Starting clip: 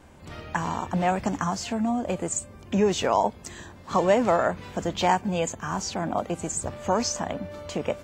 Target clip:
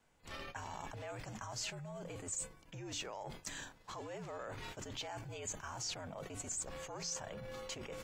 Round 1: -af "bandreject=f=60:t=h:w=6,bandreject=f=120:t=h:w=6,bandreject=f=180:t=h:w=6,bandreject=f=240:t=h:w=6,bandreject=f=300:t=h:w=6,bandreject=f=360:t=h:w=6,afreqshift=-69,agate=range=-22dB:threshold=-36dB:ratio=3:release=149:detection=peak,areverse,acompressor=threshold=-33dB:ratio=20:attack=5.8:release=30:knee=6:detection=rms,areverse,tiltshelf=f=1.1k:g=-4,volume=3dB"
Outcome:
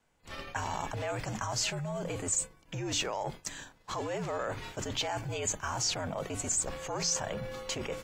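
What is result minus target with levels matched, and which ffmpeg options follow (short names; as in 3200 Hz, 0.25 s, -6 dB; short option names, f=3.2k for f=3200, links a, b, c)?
compressor: peak gain reduction -11 dB
-af "bandreject=f=60:t=h:w=6,bandreject=f=120:t=h:w=6,bandreject=f=180:t=h:w=6,bandreject=f=240:t=h:w=6,bandreject=f=300:t=h:w=6,bandreject=f=360:t=h:w=6,afreqshift=-69,agate=range=-22dB:threshold=-36dB:ratio=3:release=149:detection=peak,areverse,acompressor=threshold=-44.5dB:ratio=20:attack=5.8:release=30:knee=6:detection=rms,areverse,tiltshelf=f=1.1k:g=-4,volume=3dB"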